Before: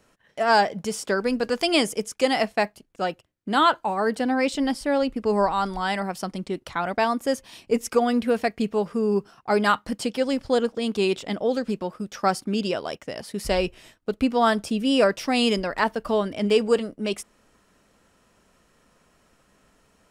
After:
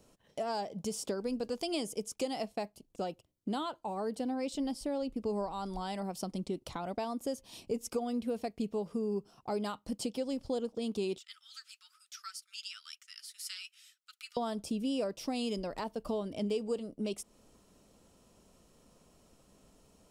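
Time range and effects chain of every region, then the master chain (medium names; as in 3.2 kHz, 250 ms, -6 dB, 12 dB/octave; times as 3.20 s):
11.18–14.37 s: Chebyshev high-pass 1.3 kHz, order 6 + flange 1.1 Hz, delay 1.5 ms, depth 3.7 ms, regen +51%
whole clip: compression 3:1, threshold -34 dBFS; peaking EQ 1.7 kHz -14 dB 1.2 oct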